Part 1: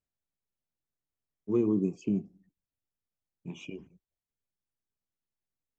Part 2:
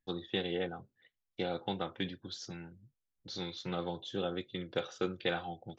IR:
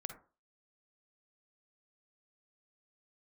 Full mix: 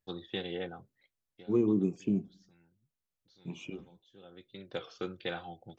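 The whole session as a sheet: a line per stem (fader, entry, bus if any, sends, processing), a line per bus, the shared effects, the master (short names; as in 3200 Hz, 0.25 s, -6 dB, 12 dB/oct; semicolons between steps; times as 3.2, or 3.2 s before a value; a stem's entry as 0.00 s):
-0.5 dB, 0.00 s, no send, dry
1.06 s -2.5 dB -> 1.73 s -13 dB -> 4.21 s -13 dB -> 4.79 s -3.5 dB, 0.00 s, no send, auto duck -11 dB, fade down 0.50 s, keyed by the first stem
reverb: off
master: record warp 33 1/3 rpm, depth 160 cents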